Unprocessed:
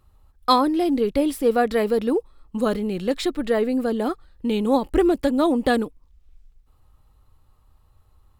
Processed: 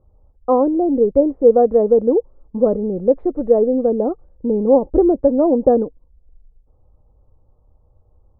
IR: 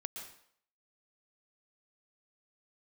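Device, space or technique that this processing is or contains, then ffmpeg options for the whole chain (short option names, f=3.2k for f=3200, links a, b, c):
under water: -af "lowpass=f=800:w=0.5412,lowpass=f=800:w=1.3066,equalizer=f=520:t=o:w=0.54:g=8.5,volume=2.5dB"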